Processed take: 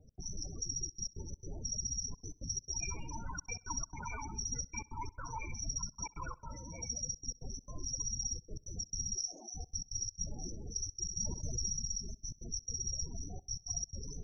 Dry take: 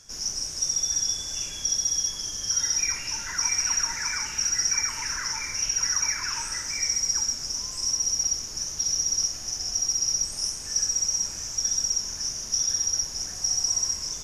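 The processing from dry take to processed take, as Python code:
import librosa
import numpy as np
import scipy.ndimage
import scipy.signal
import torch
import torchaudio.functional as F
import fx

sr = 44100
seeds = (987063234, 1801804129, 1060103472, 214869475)

y = scipy.ndimage.median_filter(x, 25, mode='constant')
y = fx.notch_comb(y, sr, f0_hz=390.0, at=(6.33, 7.13))
y = fx.highpass(y, sr, hz=290.0, slope=12, at=(9.15, 9.55))
y = fx.spec_topn(y, sr, count=16)
y = fx.step_gate(y, sr, bpm=168, pattern='x.xxxxxxxx.x.x', floor_db=-60.0, edge_ms=4.5)
y = fx.echo_feedback(y, sr, ms=65, feedback_pct=59, wet_db=-23.5)
y = fx.env_flatten(y, sr, amount_pct=70, at=(11.05, 11.72), fade=0.02)
y = y * 10.0 ** (3.5 / 20.0)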